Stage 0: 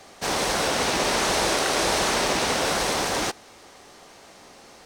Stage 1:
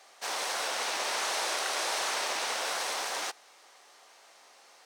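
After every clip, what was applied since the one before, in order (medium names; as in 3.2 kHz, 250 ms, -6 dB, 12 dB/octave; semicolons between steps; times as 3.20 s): high-pass 680 Hz 12 dB/octave; trim -7 dB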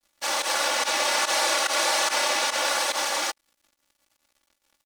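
crossover distortion -50.5 dBFS; volume shaper 144 bpm, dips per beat 1, -18 dB, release 68 ms; comb 3.5 ms, depth 100%; trim +6 dB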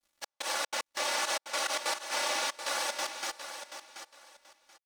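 trance gate "xxx..xxx.x..xx" 186 bpm -60 dB; on a send: feedback delay 731 ms, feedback 22%, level -10 dB; on the sum: trim -7.5 dB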